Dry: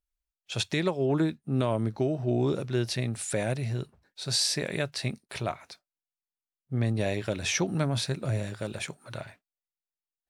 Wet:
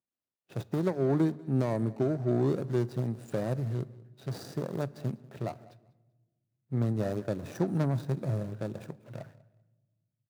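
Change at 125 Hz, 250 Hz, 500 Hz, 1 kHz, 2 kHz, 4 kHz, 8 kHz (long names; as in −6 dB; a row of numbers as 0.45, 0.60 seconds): −1.0, −0.5, −1.5, −3.5, −12.0, −20.5, −20.5 decibels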